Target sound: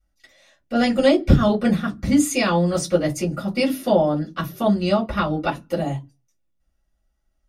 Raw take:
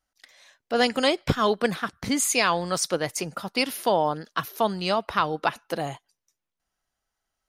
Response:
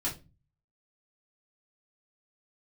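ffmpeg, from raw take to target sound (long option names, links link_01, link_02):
-filter_complex "[0:a]lowshelf=frequency=290:gain=10.5[link_01];[1:a]atrim=start_sample=2205,asetrate=88200,aresample=44100[link_02];[link_01][link_02]afir=irnorm=-1:irlink=0"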